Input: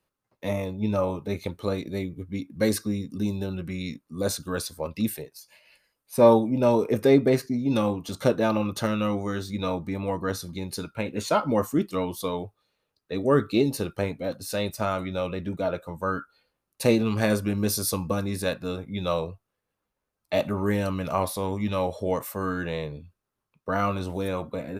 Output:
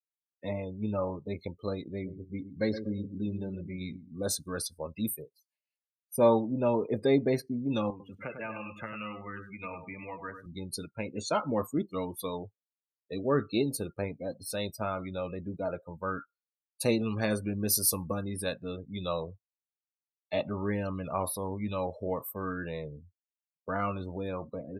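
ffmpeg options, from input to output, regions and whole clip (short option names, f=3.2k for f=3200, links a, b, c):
-filter_complex "[0:a]asettb=1/sr,asplit=3[a][b][c];[a]atrim=end=1.924[d];[b]atrim=start=1.92:end=4.23,asetpts=PTS-STARTPTS,afade=t=in:d=0.004:c=qsin,afade=t=out:st=2.306:d=0.004:c=qsin,acrossover=split=4800[e][f];[f]acompressor=threshold=-56dB:ratio=4:attack=1:release=60[g];[e][g]amix=inputs=2:normalize=0,asplit=2[h][i];[i]adelay=119,lowpass=f=2.7k:p=1,volume=-10dB,asplit=2[j][k];[k]adelay=119,lowpass=f=2.7k:p=1,volume=0.4,asplit=2[l][m];[m]adelay=119,lowpass=f=2.7k:p=1,volume=0.4,asplit=2[n][o];[o]adelay=119,lowpass=f=2.7k:p=1,volume=0.4[p];[h][j][l][n][p]amix=inputs=5:normalize=0,atrim=end_sample=101871[q];[c]atrim=start=4.226[r];[d][q]acrossfade=d=0.004:c1=hsin:c2=qsin[s];[s][r]acrossfade=d=0.004:c1=qsin:c2=hsin,asettb=1/sr,asplit=3[t][u][v];[t]atrim=end=7.904[w];[u]atrim=start=7.9:end=10.46,asetpts=PTS-STARTPTS,afade=t=in:d=0.004:c=qsin,afade=t=out:st=2.556:d=0.004:c=qsin,highshelf=f=3.2k:t=q:w=3:g=-9,acrossover=split=94|850[x][y][z];[x]acompressor=threshold=-53dB:ratio=4[aa];[y]acompressor=threshold=-38dB:ratio=4[ab];[z]acompressor=threshold=-32dB:ratio=4[ac];[aa][ab][ac]amix=inputs=3:normalize=0,aecho=1:1:99|198|297|396:0.447|0.147|0.0486|0.0161,atrim=end_sample=112896[ad];[v]atrim=start=10.456[ae];[w][ad]acrossfade=d=0.004:c1=hsin:c2=qsin[af];[af][ae]acrossfade=d=0.004:c1=qsin:c2=hsin,afftdn=nr=36:nf=-36,highshelf=f=5.1k:g=12,volume=-6.5dB"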